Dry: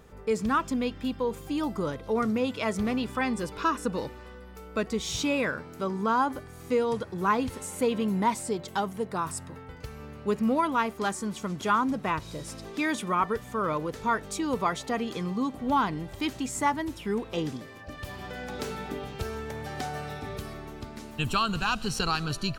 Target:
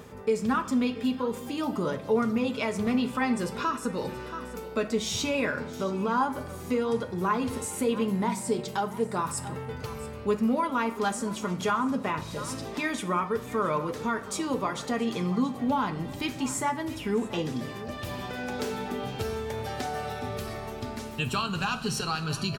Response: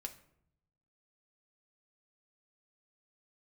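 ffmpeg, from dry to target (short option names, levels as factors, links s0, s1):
-filter_complex "[0:a]highpass=69,aecho=1:1:678:0.1,asplit=2[s0][s1];[s1]acompressor=threshold=0.0112:ratio=6,volume=0.841[s2];[s0][s2]amix=inputs=2:normalize=0,alimiter=limit=0.126:level=0:latency=1:release=211,areverse,acompressor=mode=upward:threshold=0.0316:ratio=2.5,areverse[s3];[1:a]atrim=start_sample=2205[s4];[s3][s4]afir=irnorm=-1:irlink=0,volume=1.41"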